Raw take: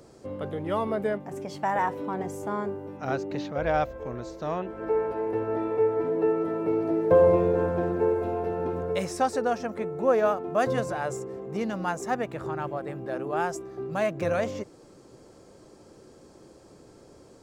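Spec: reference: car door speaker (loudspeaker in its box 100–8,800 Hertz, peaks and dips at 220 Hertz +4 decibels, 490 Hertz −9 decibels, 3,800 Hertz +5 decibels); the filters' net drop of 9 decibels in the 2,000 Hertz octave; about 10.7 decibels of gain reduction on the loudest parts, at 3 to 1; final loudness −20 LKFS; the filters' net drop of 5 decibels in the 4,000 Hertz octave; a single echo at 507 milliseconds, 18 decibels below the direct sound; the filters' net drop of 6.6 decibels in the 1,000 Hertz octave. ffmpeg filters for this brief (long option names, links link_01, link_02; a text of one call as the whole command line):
ffmpeg -i in.wav -af "equalizer=frequency=1000:width_type=o:gain=-6.5,equalizer=frequency=2000:width_type=o:gain=-8.5,equalizer=frequency=4000:width_type=o:gain=-6,acompressor=threshold=-31dB:ratio=3,highpass=100,equalizer=frequency=220:width_type=q:width=4:gain=4,equalizer=frequency=490:width_type=q:width=4:gain=-9,equalizer=frequency=3800:width_type=q:width=4:gain=5,lowpass=frequency=8800:width=0.5412,lowpass=frequency=8800:width=1.3066,aecho=1:1:507:0.126,volume=16.5dB" out.wav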